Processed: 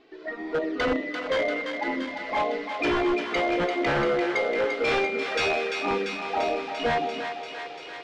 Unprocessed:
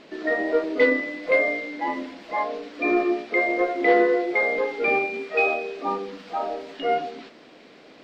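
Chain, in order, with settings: level rider gain up to 13 dB; touch-sensitive flanger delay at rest 2.7 ms, full sweep at -13 dBFS; wavefolder -13 dBFS; distance through air 95 m; thinning echo 343 ms, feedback 78%, high-pass 700 Hz, level -5.5 dB; trim -5.5 dB

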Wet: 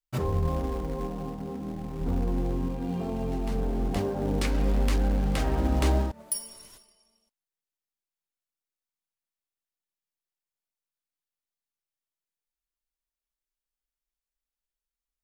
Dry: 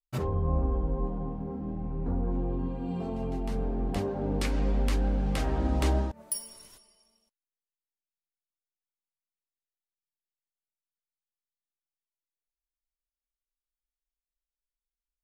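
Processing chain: in parallel at -11 dB: companded quantiser 4-bit; 0.48–2.01 s: on the sum: bass shelf 110 Hz -9 dB

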